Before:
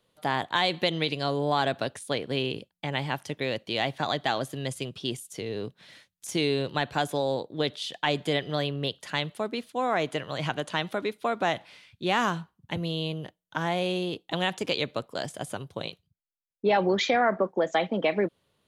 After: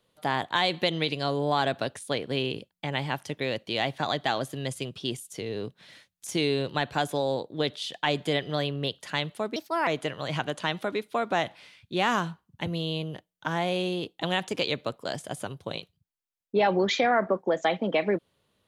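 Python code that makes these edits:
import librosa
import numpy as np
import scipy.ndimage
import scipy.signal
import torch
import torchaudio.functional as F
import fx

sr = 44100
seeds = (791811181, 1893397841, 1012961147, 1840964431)

y = fx.edit(x, sr, fx.speed_span(start_s=9.56, length_s=0.41, speed=1.32), tone=tone)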